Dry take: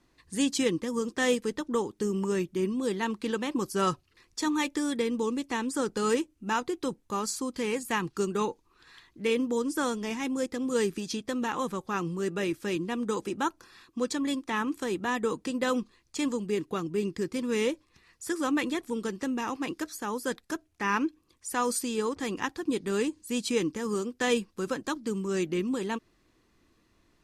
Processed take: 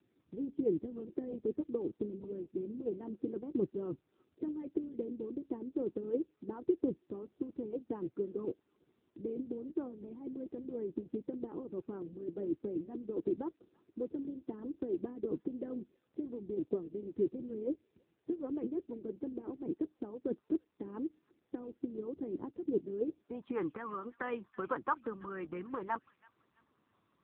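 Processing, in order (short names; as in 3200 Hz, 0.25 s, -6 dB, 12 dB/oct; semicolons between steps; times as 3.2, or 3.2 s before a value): 6.33–7.62 block floating point 5-bit; harmonic-percussive split harmonic -12 dB; thin delay 0.329 s, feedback 33%, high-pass 2500 Hz, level -12 dB; low-pass sweep 370 Hz -> 1200 Hz, 22.98–23.57; gain -2 dB; AMR-NB 6.7 kbps 8000 Hz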